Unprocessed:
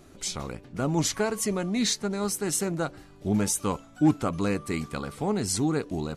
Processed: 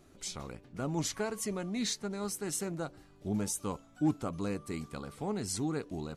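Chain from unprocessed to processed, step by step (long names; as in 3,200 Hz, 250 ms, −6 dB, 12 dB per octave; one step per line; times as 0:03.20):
0:02.74–0:05.10: dynamic equaliser 2,000 Hz, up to −4 dB, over −44 dBFS, Q 0.95
level −8 dB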